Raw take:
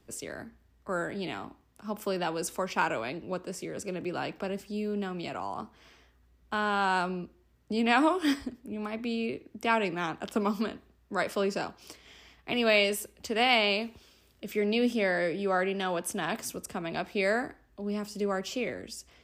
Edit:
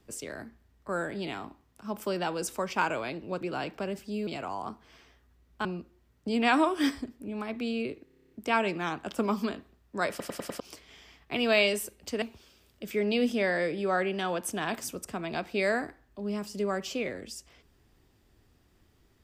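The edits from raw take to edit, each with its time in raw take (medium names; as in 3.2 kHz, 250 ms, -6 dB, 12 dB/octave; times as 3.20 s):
3.41–4.03 s: delete
4.89–5.19 s: delete
6.57–7.09 s: delete
9.48 s: stutter 0.03 s, 10 plays
11.27 s: stutter in place 0.10 s, 5 plays
13.39–13.83 s: delete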